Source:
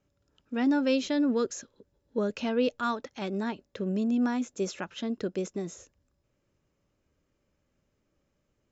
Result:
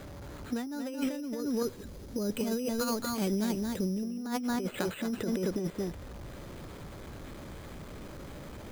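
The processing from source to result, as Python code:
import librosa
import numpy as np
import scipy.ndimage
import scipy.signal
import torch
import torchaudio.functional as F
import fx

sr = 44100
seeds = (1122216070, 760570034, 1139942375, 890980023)

y = x + 0.5 * 10.0 ** (-44.0 / 20.0) * np.sign(x)
y = fx.low_shelf(y, sr, hz=200.0, db=2.5)
y = np.repeat(scipy.signal.resample_poly(y, 1, 8), 8)[:len(y)]
y = fx.peak_eq(y, sr, hz=1100.0, db=-8.5, octaves=2.6, at=(1.4, 4.03))
y = y + 10.0 ** (-6.0 / 20.0) * np.pad(y, (int(225 * sr / 1000.0), 0))[:len(y)]
y = fx.over_compress(y, sr, threshold_db=-32.0, ratio=-1.0)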